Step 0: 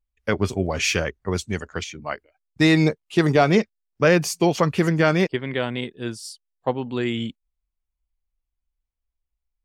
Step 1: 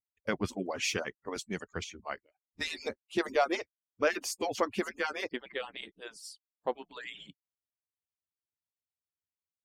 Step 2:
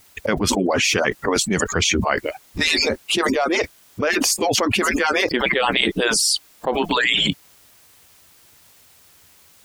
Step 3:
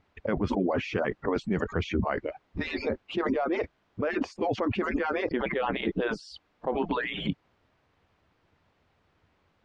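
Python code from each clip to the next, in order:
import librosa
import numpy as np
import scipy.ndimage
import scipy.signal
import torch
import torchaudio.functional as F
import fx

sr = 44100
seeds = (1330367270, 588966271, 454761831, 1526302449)

y1 = fx.hpss_only(x, sr, part='percussive')
y1 = y1 * 10.0 ** (-8.5 / 20.0)
y2 = fx.env_flatten(y1, sr, amount_pct=100)
y2 = y2 * 10.0 ** (4.0 / 20.0)
y3 = fx.spacing_loss(y2, sr, db_at_10k=45)
y3 = y3 * 10.0 ** (-5.0 / 20.0)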